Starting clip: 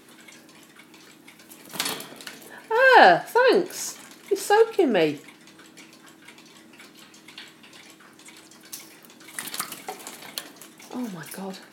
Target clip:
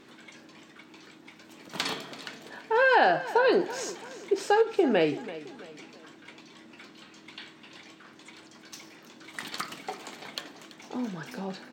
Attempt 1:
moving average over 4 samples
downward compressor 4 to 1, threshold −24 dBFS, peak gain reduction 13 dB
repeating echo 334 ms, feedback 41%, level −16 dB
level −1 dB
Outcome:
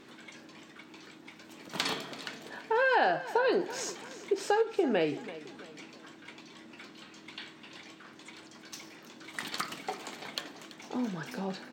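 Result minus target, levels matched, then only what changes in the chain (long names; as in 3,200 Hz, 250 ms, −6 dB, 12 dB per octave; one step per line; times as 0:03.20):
downward compressor: peak gain reduction +5 dB
change: downward compressor 4 to 1, threshold −17.5 dBFS, peak gain reduction 8 dB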